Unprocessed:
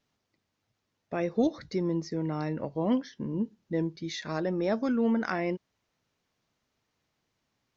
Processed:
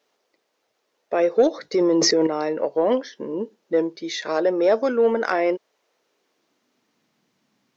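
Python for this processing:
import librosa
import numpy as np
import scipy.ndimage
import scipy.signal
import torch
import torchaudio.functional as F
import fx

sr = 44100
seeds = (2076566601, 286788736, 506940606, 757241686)

p1 = fx.filter_sweep_highpass(x, sr, from_hz=460.0, to_hz=200.0, start_s=5.89, end_s=7.14, q=2.1)
p2 = 10.0 ** (-21.0 / 20.0) * np.tanh(p1 / 10.0 ** (-21.0 / 20.0))
p3 = p1 + F.gain(torch.from_numpy(p2), -3.5).numpy()
p4 = fx.env_flatten(p3, sr, amount_pct=100, at=(1.74, 2.27))
y = F.gain(torch.from_numpy(p4), 3.5).numpy()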